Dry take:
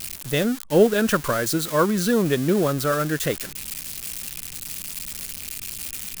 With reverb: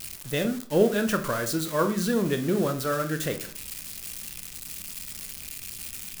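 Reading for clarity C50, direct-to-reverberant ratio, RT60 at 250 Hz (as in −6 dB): 12.0 dB, 7.0 dB, 0.50 s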